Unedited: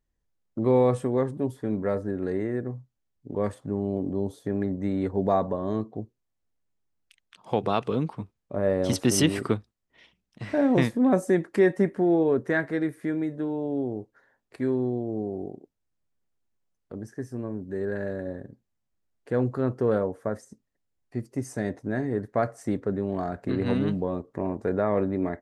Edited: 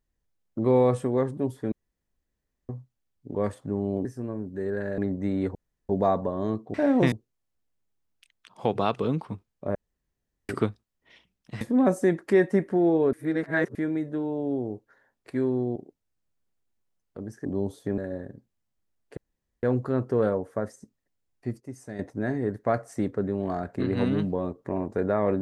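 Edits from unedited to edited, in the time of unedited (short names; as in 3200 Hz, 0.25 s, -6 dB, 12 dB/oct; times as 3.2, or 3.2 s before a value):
1.72–2.69 room tone
4.05–4.58 swap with 17.2–18.13
5.15 insert room tone 0.34 s
8.63–9.37 room tone
10.49–10.87 move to 6
12.39–13.01 reverse
15.02–15.51 cut
19.32 insert room tone 0.46 s
21.29–21.68 gain -9 dB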